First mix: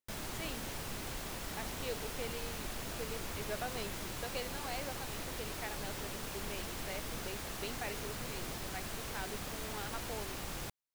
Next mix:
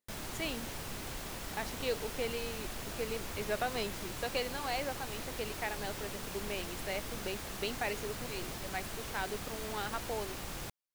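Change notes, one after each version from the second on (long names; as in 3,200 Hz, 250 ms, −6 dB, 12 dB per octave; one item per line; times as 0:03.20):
speech +6.5 dB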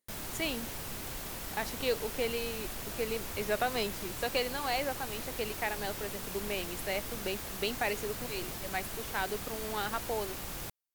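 speech +3.5 dB
master: add parametric band 16,000 Hz +8 dB 0.82 octaves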